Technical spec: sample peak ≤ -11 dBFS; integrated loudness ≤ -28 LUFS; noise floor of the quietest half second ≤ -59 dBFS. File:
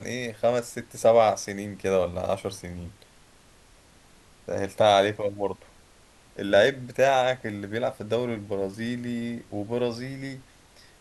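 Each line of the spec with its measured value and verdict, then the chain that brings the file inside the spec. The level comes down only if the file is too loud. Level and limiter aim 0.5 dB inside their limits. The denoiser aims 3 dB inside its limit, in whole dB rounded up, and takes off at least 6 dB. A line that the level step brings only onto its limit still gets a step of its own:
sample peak -7.5 dBFS: fail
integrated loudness -26.0 LUFS: fail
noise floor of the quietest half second -55 dBFS: fail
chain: noise reduction 6 dB, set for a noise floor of -55 dBFS; trim -2.5 dB; peak limiter -11.5 dBFS

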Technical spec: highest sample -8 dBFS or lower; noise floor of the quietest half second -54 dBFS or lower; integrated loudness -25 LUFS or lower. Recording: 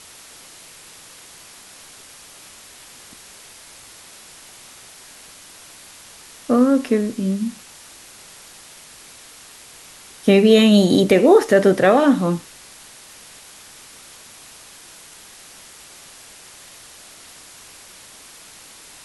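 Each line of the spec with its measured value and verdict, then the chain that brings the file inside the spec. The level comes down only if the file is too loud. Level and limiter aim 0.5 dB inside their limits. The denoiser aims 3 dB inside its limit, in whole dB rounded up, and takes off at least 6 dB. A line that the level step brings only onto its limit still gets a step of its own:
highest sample -2.5 dBFS: fail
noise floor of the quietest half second -43 dBFS: fail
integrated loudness -15.5 LUFS: fail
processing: noise reduction 6 dB, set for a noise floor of -43 dBFS; trim -10 dB

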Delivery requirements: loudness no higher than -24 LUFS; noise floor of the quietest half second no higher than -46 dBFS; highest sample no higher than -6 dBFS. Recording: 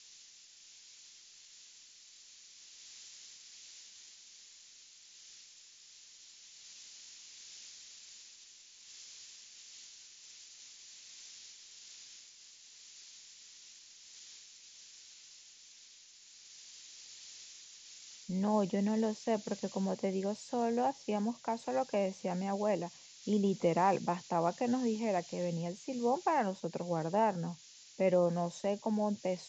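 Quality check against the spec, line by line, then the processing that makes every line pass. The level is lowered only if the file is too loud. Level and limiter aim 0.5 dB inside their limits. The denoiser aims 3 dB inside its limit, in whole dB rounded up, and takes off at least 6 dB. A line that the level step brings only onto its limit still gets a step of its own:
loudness -34.0 LUFS: pass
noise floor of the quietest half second -58 dBFS: pass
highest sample -17.0 dBFS: pass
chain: none needed

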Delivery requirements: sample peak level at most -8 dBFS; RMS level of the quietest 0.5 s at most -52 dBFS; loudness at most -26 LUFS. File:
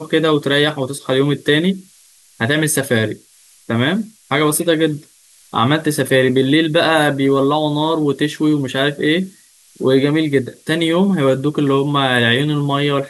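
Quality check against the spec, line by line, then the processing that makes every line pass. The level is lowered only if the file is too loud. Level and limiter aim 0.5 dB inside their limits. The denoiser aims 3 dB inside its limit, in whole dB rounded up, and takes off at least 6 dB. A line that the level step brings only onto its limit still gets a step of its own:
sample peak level -2.5 dBFS: fail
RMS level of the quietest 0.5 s -49 dBFS: fail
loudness -16.0 LUFS: fail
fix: trim -10.5 dB

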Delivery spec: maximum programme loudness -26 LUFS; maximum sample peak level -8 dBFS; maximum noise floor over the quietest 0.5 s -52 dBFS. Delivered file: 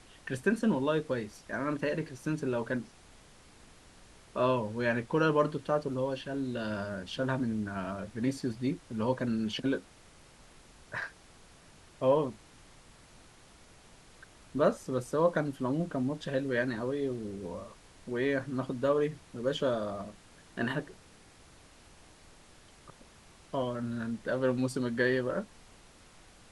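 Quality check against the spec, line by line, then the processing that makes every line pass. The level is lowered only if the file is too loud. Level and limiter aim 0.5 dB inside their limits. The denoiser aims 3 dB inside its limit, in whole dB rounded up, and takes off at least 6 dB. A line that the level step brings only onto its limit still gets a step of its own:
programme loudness -32.5 LUFS: pass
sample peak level -14.0 dBFS: pass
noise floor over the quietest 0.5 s -57 dBFS: pass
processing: none needed

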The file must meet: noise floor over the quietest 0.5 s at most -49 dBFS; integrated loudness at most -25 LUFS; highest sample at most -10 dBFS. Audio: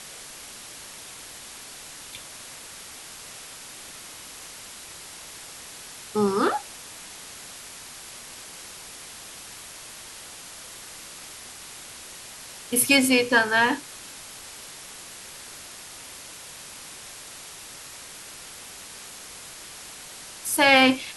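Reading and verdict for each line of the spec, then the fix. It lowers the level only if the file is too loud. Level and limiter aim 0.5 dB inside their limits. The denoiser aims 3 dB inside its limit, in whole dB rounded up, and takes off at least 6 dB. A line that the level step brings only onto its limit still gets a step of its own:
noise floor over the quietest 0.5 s -42 dBFS: fail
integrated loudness -21.0 LUFS: fail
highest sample -5.0 dBFS: fail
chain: noise reduction 6 dB, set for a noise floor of -42 dBFS; trim -4.5 dB; peak limiter -10.5 dBFS

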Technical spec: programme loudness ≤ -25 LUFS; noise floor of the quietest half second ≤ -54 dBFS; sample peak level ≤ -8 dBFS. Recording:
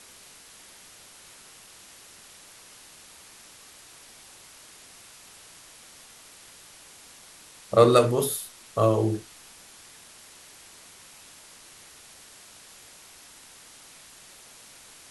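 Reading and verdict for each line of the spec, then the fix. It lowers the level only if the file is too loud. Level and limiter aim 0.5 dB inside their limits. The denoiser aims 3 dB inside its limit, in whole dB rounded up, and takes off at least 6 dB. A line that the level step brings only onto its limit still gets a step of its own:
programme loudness -23.0 LUFS: fail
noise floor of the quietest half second -50 dBFS: fail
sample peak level -4.5 dBFS: fail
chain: noise reduction 6 dB, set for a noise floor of -50 dBFS; trim -2.5 dB; peak limiter -8.5 dBFS

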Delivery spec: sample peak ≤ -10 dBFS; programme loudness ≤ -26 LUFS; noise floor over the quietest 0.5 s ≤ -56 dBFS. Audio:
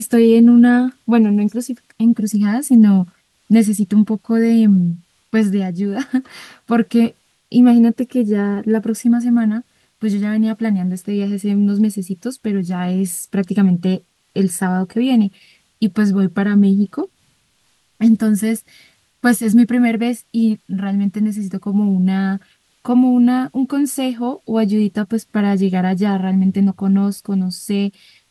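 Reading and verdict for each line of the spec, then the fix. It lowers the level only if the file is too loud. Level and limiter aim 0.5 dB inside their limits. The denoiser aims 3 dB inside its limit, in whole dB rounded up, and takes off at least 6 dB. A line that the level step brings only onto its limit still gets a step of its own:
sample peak -3.5 dBFS: fail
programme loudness -16.5 LUFS: fail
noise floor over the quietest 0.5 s -61 dBFS: pass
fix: trim -10 dB

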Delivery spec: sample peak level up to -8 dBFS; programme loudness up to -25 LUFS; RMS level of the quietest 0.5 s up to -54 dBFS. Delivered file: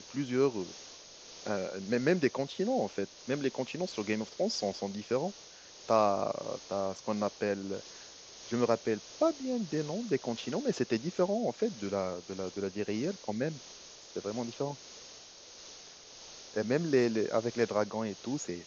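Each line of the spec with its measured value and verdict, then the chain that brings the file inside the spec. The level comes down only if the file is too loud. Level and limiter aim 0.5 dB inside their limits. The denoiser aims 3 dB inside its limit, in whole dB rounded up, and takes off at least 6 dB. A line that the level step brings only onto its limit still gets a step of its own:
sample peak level -12.5 dBFS: pass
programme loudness -33.0 LUFS: pass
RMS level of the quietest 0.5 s -52 dBFS: fail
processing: noise reduction 6 dB, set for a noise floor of -52 dBFS

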